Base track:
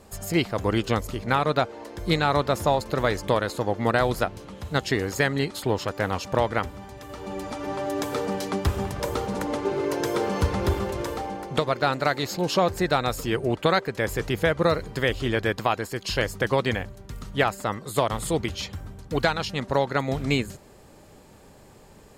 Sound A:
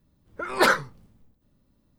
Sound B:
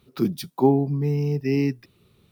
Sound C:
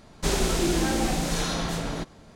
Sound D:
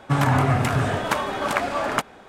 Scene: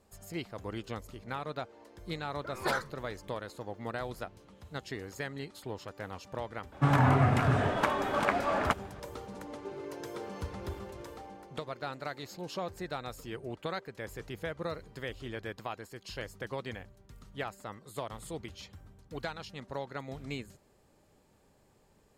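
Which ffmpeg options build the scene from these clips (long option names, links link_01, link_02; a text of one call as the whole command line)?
ffmpeg -i bed.wav -i cue0.wav -i cue1.wav -i cue2.wav -i cue3.wav -filter_complex "[0:a]volume=-15.5dB[link_01];[4:a]highshelf=frequency=4200:gain=-10.5[link_02];[1:a]atrim=end=1.98,asetpts=PTS-STARTPTS,volume=-13dB,afade=type=in:duration=0.004:curve=hsin,afade=type=out:start_time=1.976:duration=0.004:curve=hsin,adelay=2050[link_03];[link_02]atrim=end=2.28,asetpts=PTS-STARTPTS,volume=-4.5dB,afade=type=in:duration=0.004:curve=hsin,afade=type=out:start_time=2.276:duration=0.004:curve=hsin,adelay=6720[link_04];[link_01][link_03][link_04]amix=inputs=3:normalize=0" out.wav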